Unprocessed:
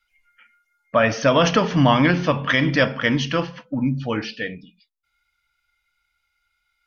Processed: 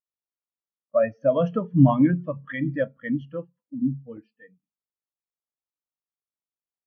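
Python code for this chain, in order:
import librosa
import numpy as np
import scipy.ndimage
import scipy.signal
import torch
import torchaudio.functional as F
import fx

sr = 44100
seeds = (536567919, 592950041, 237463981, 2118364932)

y = fx.dmg_buzz(x, sr, base_hz=50.0, harmonics=27, level_db=-48.0, tilt_db=0, odd_only=False)
y = fx.buffer_crackle(y, sr, first_s=0.69, period_s=0.12, block=64, kind='repeat')
y = fx.spectral_expand(y, sr, expansion=2.5)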